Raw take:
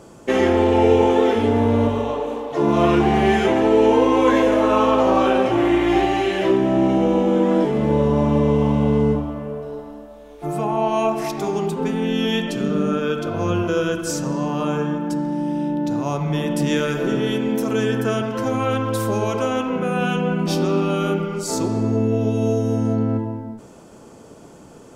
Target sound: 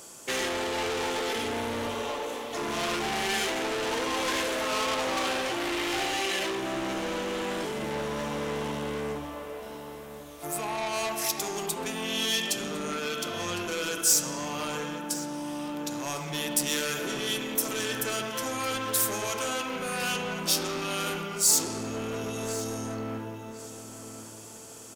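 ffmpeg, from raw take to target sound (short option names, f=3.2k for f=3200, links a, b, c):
-filter_complex "[0:a]lowshelf=f=270:g=-9,asoftclip=type=tanh:threshold=-22.5dB,crystalizer=i=8:c=0,asplit=2[a][b];[b]adelay=1056,lowpass=f=3.9k:p=1,volume=-11dB,asplit=2[c][d];[d]adelay=1056,lowpass=f=3.9k:p=1,volume=0.38,asplit=2[e][f];[f]adelay=1056,lowpass=f=3.9k:p=1,volume=0.38,asplit=2[g][h];[h]adelay=1056,lowpass=f=3.9k:p=1,volume=0.38[i];[c][e][g][i]amix=inputs=4:normalize=0[j];[a][j]amix=inputs=2:normalize=0,volume=-8dB"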